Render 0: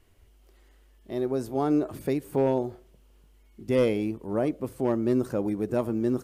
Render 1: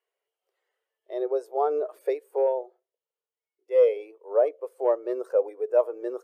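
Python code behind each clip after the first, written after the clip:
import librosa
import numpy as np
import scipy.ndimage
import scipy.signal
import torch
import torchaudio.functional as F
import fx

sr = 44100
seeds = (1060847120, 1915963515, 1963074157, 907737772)

y = scipy.signal.sosfilt(scipy.signal.ellip(4, 1.0, 80, 450.0, 'highpass', fs=sr, output='sos'), x)
y = fx.rider(y, sr, range_db=10, speed_s=0.5)
y = fx.spectral_expand(y, sr, expansion=1.5)
y = y * 10.0 ** (6.5 / 20.0)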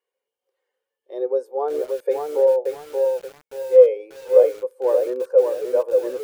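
y = fx.notch_comb(x, sr, f0_hz=660.0)
y = fx.small_body(y, sr, hz=(250.0, 520.0), ring_ms=60, db=11)
y = fx.echo_crushed(y, sr, ms=579, feedback_pct=35, bits=7, wet_db=-3.5)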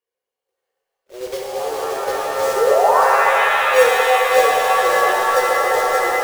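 y = fx.block_float(x, sr, bits=3)
y = fx.spec_paint(y, sr, seeds[0], shape='rise', start_s=2.56, length_s=0.46, low_hz=400.0, high_hz=1200.0, level_db=-13.0)
y = fx.rev_shimmer(y, sr, seeds[1], rt60_s=3.9, semitones=7, shimmer_db=-2, drr_db=-3.0)
y = y * 10.0 ** (-5.5 / 20.0)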